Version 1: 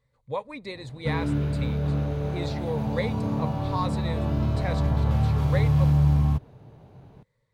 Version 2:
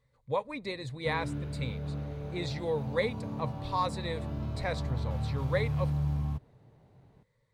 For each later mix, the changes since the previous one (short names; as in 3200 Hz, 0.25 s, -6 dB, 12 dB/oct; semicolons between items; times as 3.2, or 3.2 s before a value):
background -10.5 dB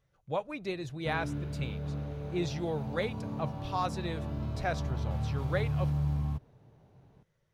speech: remove ripple EQ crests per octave 0.98, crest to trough 11 dB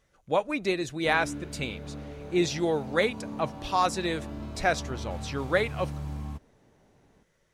speech +7.0 dB; master: add ten-band EQ 125 Hz -11 dB, 250 Hz +5 dB, 2000 Hz +3 dB, 8000 Hz +8 dB